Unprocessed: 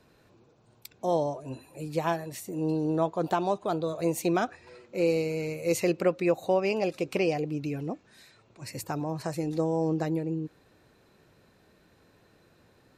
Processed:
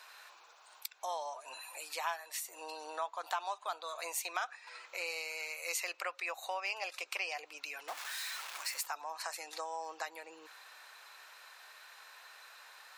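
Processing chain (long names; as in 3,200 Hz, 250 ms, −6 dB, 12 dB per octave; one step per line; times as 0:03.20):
0:07.88–0:08.86: converter with a step at zero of −38.5 dBFS
high-pass filter 920 Hz 24 dB per octave
downward compressor 2 to 1, threshold −60 dBFS, peak gain reduction 17.5 dB
level +13 dB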